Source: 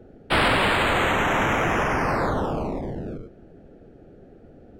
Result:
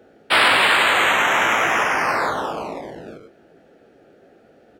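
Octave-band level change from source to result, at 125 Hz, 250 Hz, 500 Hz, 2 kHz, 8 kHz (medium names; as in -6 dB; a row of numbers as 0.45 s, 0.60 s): -11.5 dB, -5.0 dB, 0.0 dB, +7.0 dB, +8.5 dB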